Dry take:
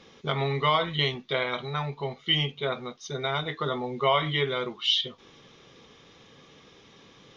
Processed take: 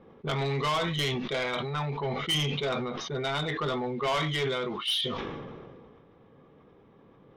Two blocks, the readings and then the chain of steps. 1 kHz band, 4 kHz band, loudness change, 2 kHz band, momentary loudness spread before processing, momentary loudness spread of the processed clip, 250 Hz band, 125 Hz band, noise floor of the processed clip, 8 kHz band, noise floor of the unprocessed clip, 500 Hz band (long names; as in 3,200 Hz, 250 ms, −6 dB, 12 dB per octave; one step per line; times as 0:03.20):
−3.0 dB, −3.0 dB, −2.0 dB, −2.0 dB, 8 LU, 6 LU, +1.5 dB, −0.5 dB, −57 dBFS, can't be measured, −55 dBFS, −1.5 dB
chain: low-pass that shuts in the quiet parts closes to 900 Hz, open at −21.5 dBFS
in parallel at +2.5 dB: speech leveller 2 s
on the sum: soft clipping −16.5 dBFS, distortion −9 dB
level that may fall only so fast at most 27 dB per second
level −7 dB